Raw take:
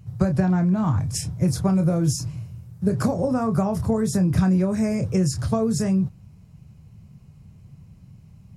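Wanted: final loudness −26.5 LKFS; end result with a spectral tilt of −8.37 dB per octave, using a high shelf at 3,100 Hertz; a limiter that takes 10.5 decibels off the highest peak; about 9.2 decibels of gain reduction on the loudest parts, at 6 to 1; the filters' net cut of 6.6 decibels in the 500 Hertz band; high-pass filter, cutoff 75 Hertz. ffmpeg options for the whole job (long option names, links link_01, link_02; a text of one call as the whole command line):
ffmpeg -i in.wav -af "highpass=75,equalizer=frequency=500:width_type=o:gain=-8.5,highshelf=frequency=3100:gain=-3.5,acompressor=threshold=-26dB:ratio=6,volume=7.5dB,alimiter=limit=-19.5dB:level=0:latency=1" out.wav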